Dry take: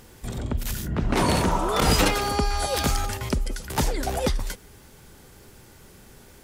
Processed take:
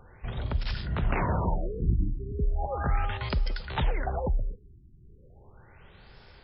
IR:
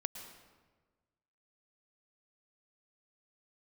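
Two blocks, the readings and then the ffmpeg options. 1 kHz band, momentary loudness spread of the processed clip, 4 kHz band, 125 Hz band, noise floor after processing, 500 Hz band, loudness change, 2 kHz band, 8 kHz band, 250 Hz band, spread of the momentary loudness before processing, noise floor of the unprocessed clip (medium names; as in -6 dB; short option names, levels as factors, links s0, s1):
-8.0 dB, 6 LU, -13.5 dB, -2.0 dB, -55 dBFS, -8.0 dB, -6.0 dB, -8.0 dB, under -40 dB, -9.0 dB, 11 LU, -50 dBFS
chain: -filter_complex "[0:a]equalizer=f=270:t=o:w=1.3:g=-11,acrossover=split=330|3000[s0][s1][s2];[s1]acompressor=threshold=0.0316:ratio=3[s3];[s0][s3][s2]amix=inputs=3:normalize=0,aresample=32000,aresample=44100,afftfilt=real='re*lt(b*sr/1024,370*pow(5500/370,0.5+0.5*sin(2*PI*0.36*pts/sr)))':imag='im*lt(b*sr/1024,370*pow(5500/370,0.5+0.5*sin(2*PI*0.36*pts/sr)))':win_size=1024:overlap=0.75"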